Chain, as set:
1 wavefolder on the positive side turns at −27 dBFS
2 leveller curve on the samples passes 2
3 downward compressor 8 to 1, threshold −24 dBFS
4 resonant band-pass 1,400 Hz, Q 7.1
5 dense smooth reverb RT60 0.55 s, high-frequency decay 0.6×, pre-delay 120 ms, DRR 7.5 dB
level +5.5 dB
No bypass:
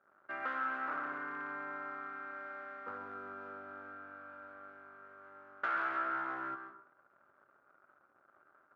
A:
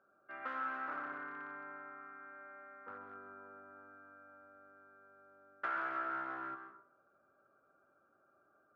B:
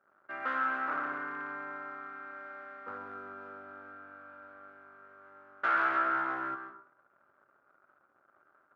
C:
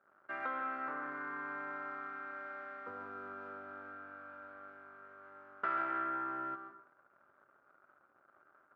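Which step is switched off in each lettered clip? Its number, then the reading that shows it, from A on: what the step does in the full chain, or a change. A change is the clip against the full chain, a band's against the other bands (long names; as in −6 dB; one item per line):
2, change in momentary loudness spread +4 LU
3, change in crest factor +1.5 dB
1, distortion level −3 dB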